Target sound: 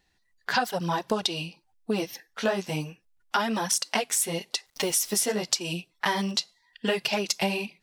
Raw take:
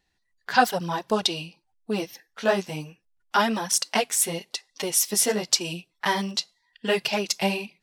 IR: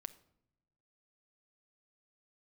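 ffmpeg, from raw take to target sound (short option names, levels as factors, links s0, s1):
-filter_complex "[0:a]asettb=1/sr,asplit=3[s0][s1][s2];[s0]atrim=end=4.664[s3];[s1]atrim=start=4.66:end=5.23,asetpts=PTS-STARTPTS,afade=t=in:d=0.004:c=qsin,afade=t=out:st=0.566:d=0.004:c=qsin,acrusher=bits=8:dc=4:mix=0:aa=0.000001[s4];[s2]atrim=start=5.226[s5];[s3][s4]acrossfade=d=0.004:c1=hsin:c2=qsin[s6];[s6][s5]acrossfade=d=0.004:c1=qsin:c2=hsin,acompressor=threshold=0.0501:ratio=6,volume=1.5"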